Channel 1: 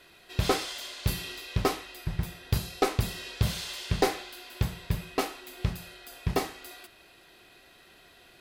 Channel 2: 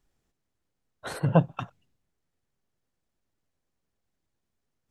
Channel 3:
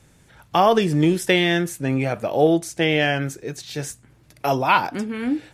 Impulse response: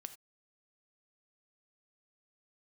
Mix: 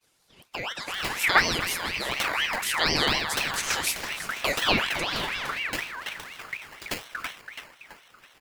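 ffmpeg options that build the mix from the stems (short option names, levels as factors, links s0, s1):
-filter_complex "[0:a]acrusher=samples=19:mix=1:aa=0.000001,adelay=550,volume=0.501,asplit=2[s0][s1];[s1]volume=0.355[s2];[1:a]volume=0.562[s3];[2:a]agate=range=0.0224:threshold=0.00355:ratio=3:detection=peak,acompressor=threshold=0.0398:ratio=2,volume=1.06,asplit=2[s4][s5];[s5]volume=0.224[s6];[s0][s4]amix=inputs=2:normalize=0,highpass=950,alimiter=limit=0.126:level=0:latency=1:release=387,volume=1[s7];[s2][s6]amix=inputs=2:normalize=0,aecho=0:1:331|662|993|1324|1655|1986:1|0.46|0.212|0.0973|0.0448|0.0206[s8];[s3][s7][s8]amix=inputs=3:normalize=0,dynaudnorm=f=100:g=17:m=3.16,aeval=exprs='val(0)*sin(2*PI*1900*n/s+1900*0.35/4.1*sin(2*PI*4.1*n/s))':c=same"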